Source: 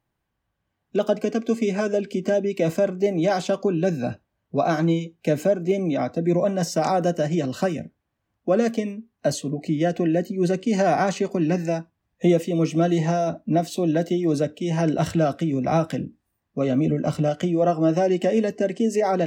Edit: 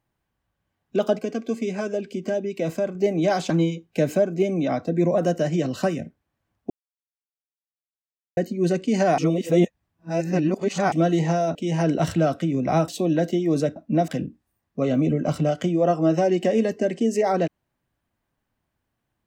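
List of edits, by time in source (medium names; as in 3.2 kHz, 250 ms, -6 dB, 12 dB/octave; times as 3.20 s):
1.19–2.95 s: gain -4 dB
3.50–4.79 s: delete
6.47–6.97 s: delete
8.49–10.16 s: mute
10.97–12.71 s: reverse
13.34–13.66 s: swap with 14.54–15.87 s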